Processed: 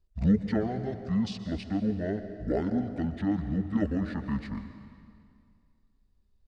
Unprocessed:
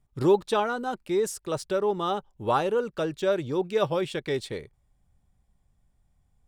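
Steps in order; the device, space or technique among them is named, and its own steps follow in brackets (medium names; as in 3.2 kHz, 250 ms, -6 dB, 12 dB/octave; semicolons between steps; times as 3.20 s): monster voice (pitch shift -11.5 st; bass shelf 190 Hz +6 dB; reverberation RT60 2.2 s, pre-delay 117 ms, DRR 9.5 dB); trim -5.5 dB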